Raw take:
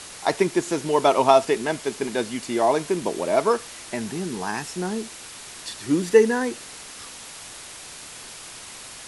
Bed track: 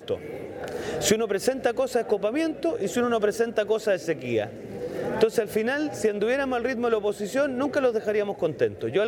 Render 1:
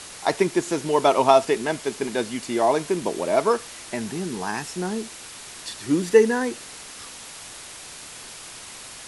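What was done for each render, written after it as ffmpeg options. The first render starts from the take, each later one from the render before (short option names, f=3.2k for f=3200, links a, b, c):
-af anull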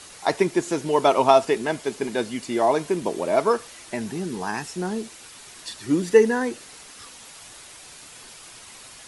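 -af "afftdn=nr=6:nf=-41"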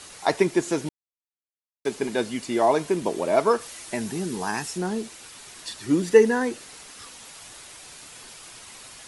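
-filter_complex "[0:a]asettb=1/sr,asplit=3[a][b][c];[a]atrim=end=3.614[d];[b]atrim=start=3.61:end=4.78,asetpts=PTS-STARTPTS,afade=t=in:d=0.004:c=qsin,afade=t=out:st=1.166:d=0.004:c=qsin,highshelf=f=6k:g=6.5[e];[c]atrim=start=4.776[f];[d][e]acrossfade=d=0.004:c1=hsin:c2=qsin[g];[g][f]acrossfade=d=0.004:c1=qsin:c2=hsin,asplit=3[h][i][j];[h]atrim=end=0.89,asetpts=PTS-STARTPTS,afade=t=out:st=0.886:d=0.004:c=hsin[k];[i]atrim=start=0.89:end=1.85,asetpts=PTS-STARTPTS,volume=0[l];[j]atrim=start=1.85,asetpts=PTS-STARTPTS,afade=t=in:d=0.004:c=hsin[m];[k][l][m]concat=n=3:v=0:a=1"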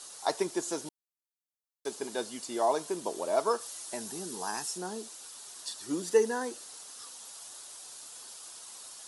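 -af "highpass=f=1.1k:p=1,equalizer=f=2.2k:t=o:w=1.1:g=-14"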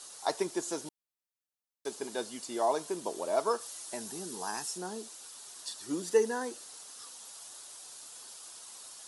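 -af "volume=-1.5dB"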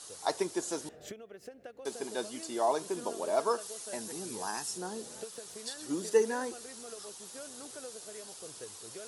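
-filter_complex "[1:a]volume=-24dB[a];[0:a][a]amix=inputs=2:normalize=0"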